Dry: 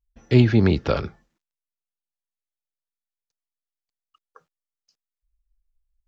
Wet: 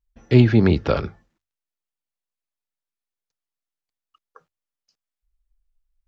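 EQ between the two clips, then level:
high-shelf EQ 4,700 Hz −6 dB
mains-hum notches 50/100 Hz
+2.0 dB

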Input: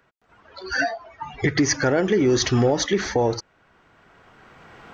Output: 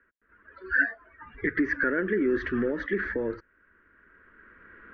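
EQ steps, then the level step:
transistor ladder low-pass 1,800 Hz, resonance 70%
low-shelf EQ 180 Hz +7.5 dB
phaser with its sweep stopped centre 320 Hz, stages 4
+4.0 dB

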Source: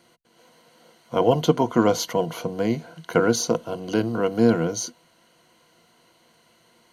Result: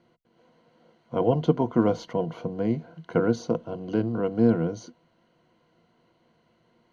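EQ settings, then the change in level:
low-pass filter 5,200 Hz 12 dB per octave
spectral tilt −3 dB per octave
low-shelf EQ 72 Hz −9 dB
−7.0 dB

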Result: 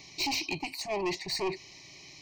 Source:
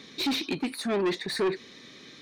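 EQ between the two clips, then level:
phaser with its sweep stopped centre 560 Hz, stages 4
phaser with its sweep stopped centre 2,400 Hz, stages 8
+6.5 dB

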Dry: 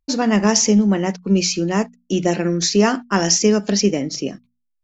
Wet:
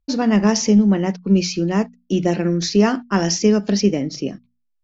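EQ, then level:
low-pass filter 5,900 Hz 24 dB per octave
low-shelf EQ 330 Hz +6 dB
−3.0 dB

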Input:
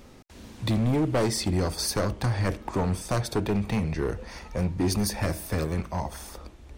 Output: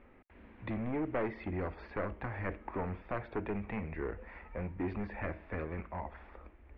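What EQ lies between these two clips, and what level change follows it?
transistor ladder low-pass 2,600 Hz, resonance 45%
high-frequency loss of the air 370 metres
parametric band 130 Hz −10 dB 1 octave
+1.0 dB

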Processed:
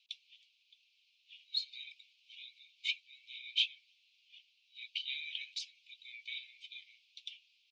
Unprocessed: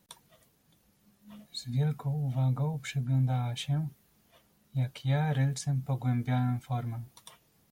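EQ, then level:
Butterworth high-pass 2,400 Hz 96 dB per octave
low-pass filter 4,200 Hz 24 dB per octave
spectral tilt −4 dB per octave
+16.5 dB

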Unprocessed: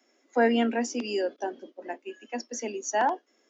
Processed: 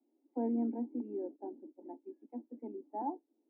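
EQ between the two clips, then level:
formant resonators in series u
low-pass filter 3,100 Hz
0.0 dB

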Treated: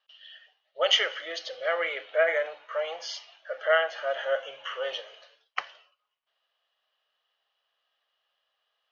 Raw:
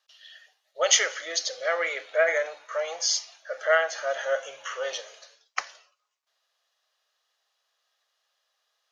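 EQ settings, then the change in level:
high-frequency loss of the air 280 metres
parametric band 3,000 Hz +11 dB 0.26 octaves
0.0 dB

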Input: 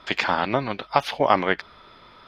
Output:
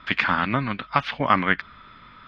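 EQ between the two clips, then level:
low-pass filter 2,600 Hz 12 dB per octave
flat-topped bell 550 Hz −11.5 dB
+4.5 dB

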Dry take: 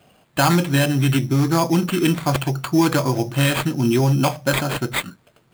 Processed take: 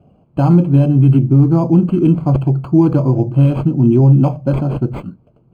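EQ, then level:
moving average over 24 samples
low-shelf EQ 420 Hz +12 dB
−1.5 dB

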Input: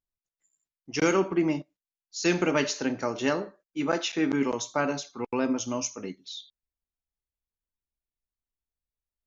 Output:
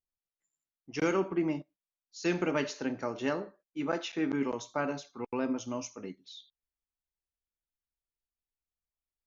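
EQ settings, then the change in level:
high-shelf EQ 4,900 Hz −10.5 dB
−5.0 dB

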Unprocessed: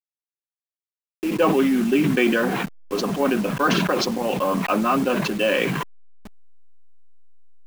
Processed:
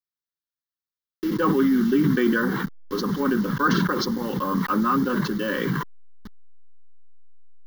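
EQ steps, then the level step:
dynamic equaliser 3,400 Hz, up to −6 dB, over −37 dBFS, Q 0.85
phaser with its sweep stopped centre 2,500 Hz, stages 6
+2.0 dB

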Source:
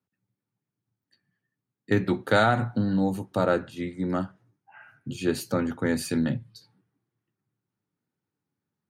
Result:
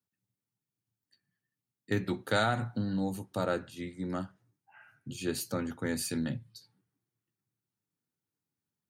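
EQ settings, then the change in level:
low-shelf EQ 81 Hz +6 dB
high-shelf EQ 3,500 Hz +10 dB
−8.5 dB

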